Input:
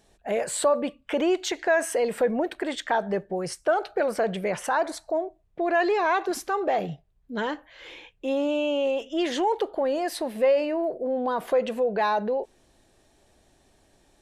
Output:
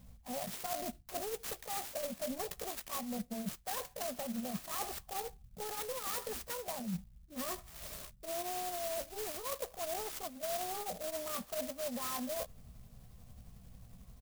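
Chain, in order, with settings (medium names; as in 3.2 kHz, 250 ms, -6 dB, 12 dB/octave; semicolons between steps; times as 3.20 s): rotating-head pitch shifter +3.5 st; resonant low shelf 300 Hz +10.5 dB, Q 3; comb 1.7 ms, depth 80%; reverse; compression 6:1, threshold -35 dBFS, peak gain reduction 18 dB; reverse; sampling jitter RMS 0.14 ms; trim -2.5 dB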